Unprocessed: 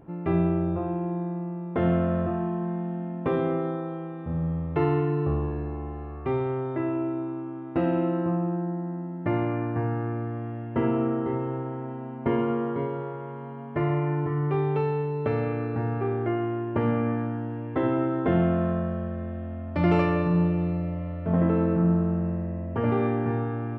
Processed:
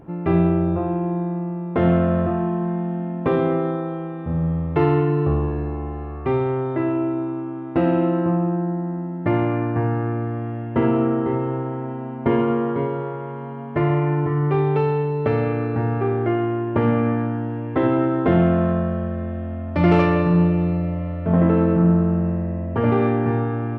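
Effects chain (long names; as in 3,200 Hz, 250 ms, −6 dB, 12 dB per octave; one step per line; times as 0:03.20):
phase distortion by the signal itself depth 0.057 ms
level +6 dB
Nellymoser 88 kbit/s 44,100 Hz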